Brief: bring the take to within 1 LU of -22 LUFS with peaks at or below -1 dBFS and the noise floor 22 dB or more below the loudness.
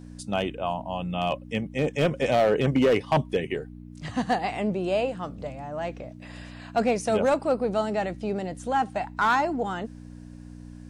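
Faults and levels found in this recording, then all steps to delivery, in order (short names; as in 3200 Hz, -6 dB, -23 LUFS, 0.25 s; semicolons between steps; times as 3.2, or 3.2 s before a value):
clipped 0.7%; flat tops at -15.0 dBFS; hum 60 Hz; harmonics up to 300 Hz; hum level -41 dBFS; loudness -26.5 LUFS; peak -15.0 dBFS; loudness target -22.0 LUFS
-> clip repair -15 dBFS; de-hum 60 Hz, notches 5; gain +4.5 dB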